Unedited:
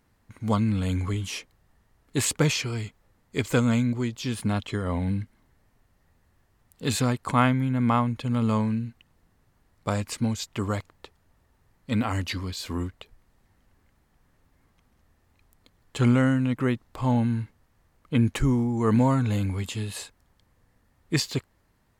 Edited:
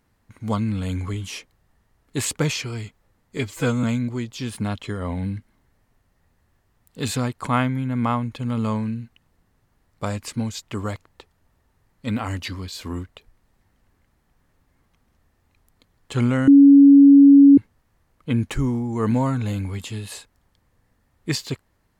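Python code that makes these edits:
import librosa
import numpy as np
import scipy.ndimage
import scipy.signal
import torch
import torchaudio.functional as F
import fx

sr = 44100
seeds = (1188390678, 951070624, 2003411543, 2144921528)

y = fx.edit(x, sr, fx.stretch_span(start_s=3.37, length_s=0.31, factor=1.5),
    fx.bleep(start_s=16.32, length_s=1.1, hz=280.0, db=-6.0), tone=tone)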